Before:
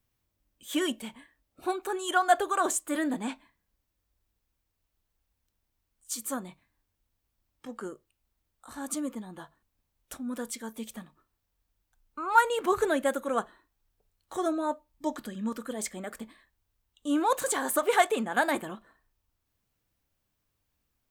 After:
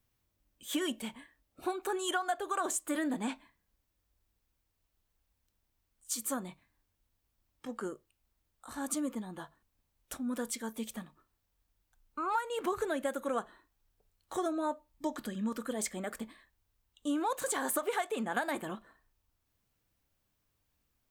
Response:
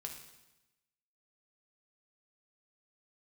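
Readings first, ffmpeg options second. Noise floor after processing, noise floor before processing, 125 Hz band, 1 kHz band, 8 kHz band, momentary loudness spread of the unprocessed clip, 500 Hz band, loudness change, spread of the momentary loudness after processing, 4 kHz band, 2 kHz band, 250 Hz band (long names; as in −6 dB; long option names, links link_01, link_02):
−80 dBFS, −81 dBFS, −1.0 dB, −8.0 dB, −3.0 dB, 21 LU, −6.0 dB, −6.0 dB, 14 LU, −4.0 dB, −7.0 dB, −3.5 dB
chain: -af "acompressor=threshold=-29dB:ratio=12"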